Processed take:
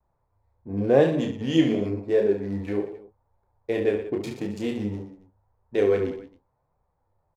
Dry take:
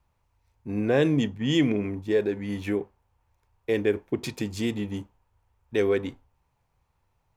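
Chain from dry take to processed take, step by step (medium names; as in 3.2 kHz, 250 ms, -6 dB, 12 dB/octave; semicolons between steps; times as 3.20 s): local Wiener filter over 15 samples; peaking EQ 590 Hz +7.5 dB 1.3 oct; reverse bouncing-ball echo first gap 30 ms, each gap 1.3×, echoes 5; flange 0.88 Hz, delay 4.4 ms, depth 9.5 ms, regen +53%; vibrato 1.1 Hz 41 cents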